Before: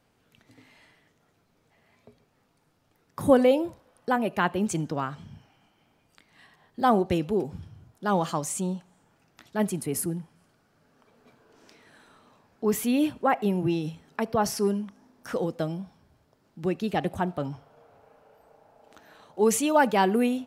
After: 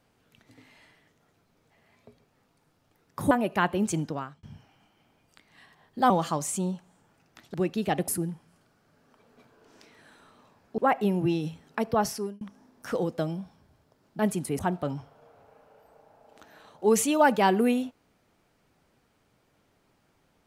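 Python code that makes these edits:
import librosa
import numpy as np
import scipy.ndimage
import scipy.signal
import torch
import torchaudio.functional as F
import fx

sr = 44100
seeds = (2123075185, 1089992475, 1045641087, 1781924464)

y = fx.edit(x, sr, fx.cut(start_s=3.31, length_s=0.81),
    fx.fade_out_span(start_s=4.83, length_s=0.41),
    fx.cut(start_s=6.91, length_s=1.21),
    fx.swap(start_s=9.56, length_s=0.4, other_s=16.6, other_length_s=0.54),
    fx.cut(start_s=12.66, length_s=0.53),
    fx.fade_out_span(start_s=14.39, length_s=0.43), tone=tone)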